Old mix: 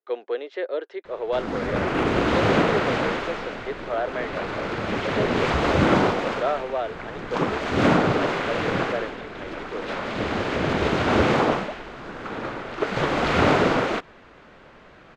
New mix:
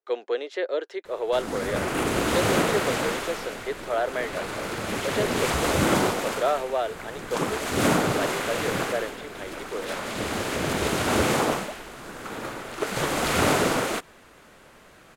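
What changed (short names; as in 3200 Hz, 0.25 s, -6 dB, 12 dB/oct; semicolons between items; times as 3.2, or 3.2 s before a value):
background -4.0 dB; master: remove air absorption 200 m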